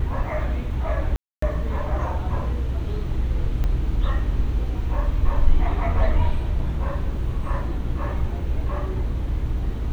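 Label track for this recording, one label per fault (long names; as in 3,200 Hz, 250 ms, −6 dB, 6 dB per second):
1.160000	1.420000	drop-out 264 ms
3.640000	3.640000	click −15 dBFS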